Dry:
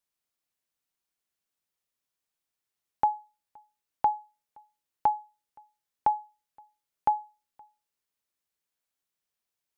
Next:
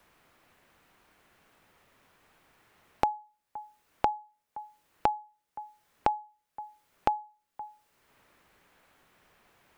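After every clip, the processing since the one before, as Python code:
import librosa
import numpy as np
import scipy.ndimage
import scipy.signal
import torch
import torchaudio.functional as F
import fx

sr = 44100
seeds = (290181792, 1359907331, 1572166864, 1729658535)

y = fx.band_squash(x, sr, depth_pct=100)
y = y * 10.0 ** (1.5 / 20.0)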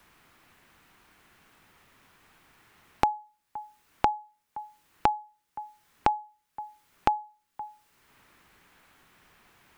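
y = fx.peak_eq(x, sr, hz=560.0, db=-6.5, octaves=0.87)
y = y * 10.0 ** (5.0 / 20.0)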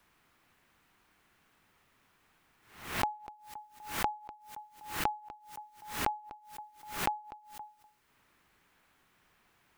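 y = x + 10.0 ** (-17.0 / 20.0) * np.pad(x, (int(247 * sr / 1000.0), 0))[:len(x)]
y = fx.pre_swell(y, sr, db_per_s=97.0)
y = y * 10.0 ** (-8.5 / 20.0)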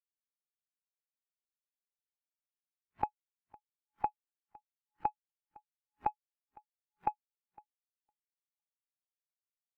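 y = fx.power_curve(x, sr, exponent=2.0)
y = fx.echo_feedback(y, sr, ms=508, feedback_pct=31, wet_db=-10.0)
y = fx.spectral_expand(y, sr, expansion=2.5)
y = y * 10.0 ** (-1.5 / 20.0)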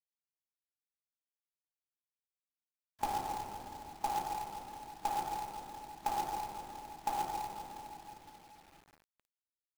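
y = fx.room_shoebox(x, sr, seeds[0], volume_m3=210.0, walls='hard', distance_m=1.4)
y = fx.quant_companded(y, sr, bits=4)
y = y * 10.0 ** (-6.0 / 20.0)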